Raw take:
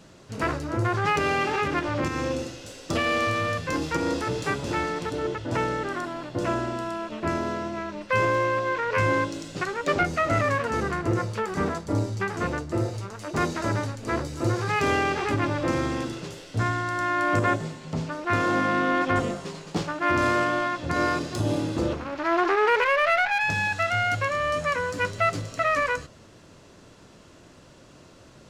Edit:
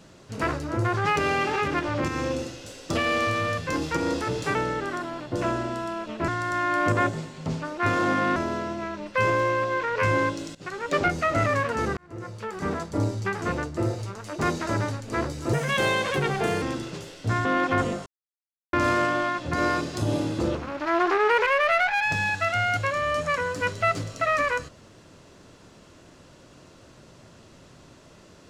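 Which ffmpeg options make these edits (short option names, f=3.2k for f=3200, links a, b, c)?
-filter_complex "[0:a]asplit=11[a][b][c][d][e][f][g][h][i][j][k];[a]atrim=end=4.552[l];[b]atrim=start=5.578:end=7.312[m];[c]atrim=start=16.748:end=18.832[n];[d]atrim=start=7.308:end=9.5,asetpts=PTS-STARTPTS,afade=t=out:st=2.188:d=0.004:c=hsin:silence=0.125893[o];[e]atrim=start=9.5:end=10.92,asetpts=PTS-STARTPTS,afade=t=in:d=0.34:silence=0.125893,afade=t=out:st=1.416:d=0.004:c=hsin[p];[f]atrim=start=10.92:end=14.484,asetpts=PTS-STARTPTS,afade=t=in:d=0.93[q];[g]atrim=start=14.48:end=15.92,asetpts=PTS-STARTPTS,asetrate=58212,aresample=44100,atrim=end_sample=48109,asetpts=PTS-STARTPTS[r];[h]atrim=start=15.916:end=16.752[s];[i]atrim=start=18.828:end=19.44,asetpts=PTS-STARTPTS,afade=t=out:st=0.608:d=0.004:c=hsin[t];[j]atrim=start=19.44:end=20.11,asetpts=PTS-STARTPTS,volume=0[u];[k]atrim=start=20.11,asetpts=PTS-STARTPTS,afade=t=in:d=0.004:c=hsin[v];[l][m]acrossfade=d=0.004:c1=hsin:c2=hsin[w];[w][n]acrossfade=d=0.004:c1=hsin:c2=hsin[x];[o][p][q]concat=n=3:v=0:a=1[y];[x][y]acrossfade=d=0.004:c1=hsin:c2=hsin[z];[z][r]acrossfade=d=0.004:c1=hsin:c2=hsin[aa];[aa][s]acrossfade=d=0.004:c1=hsin:c2=hsin[ab];[t][u][v]concat=n=3:v=0:a=1[ac];[ab][ac]acrossfade=d=0.004:c1=hsin:c2=hsin"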